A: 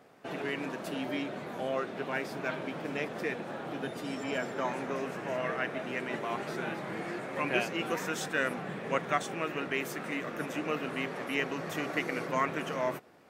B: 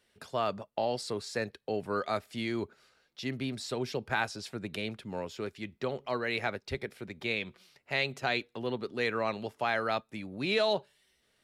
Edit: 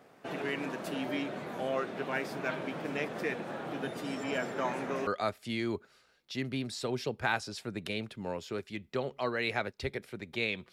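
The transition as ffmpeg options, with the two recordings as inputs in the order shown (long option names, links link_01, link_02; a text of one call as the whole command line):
ffmpeg -i cue0.wav -i cue1.wav -filter_complex "[0:a]apad=whole_dur=10.72,atrim=end=10.72,atrim=end=5.072[link_01];[1:a]atrim=start=1.948:end=7.6[link_02];[link_01][link_02]acrossfade=duration=0.004:curve1=hsin:curve2=hsin" out.wav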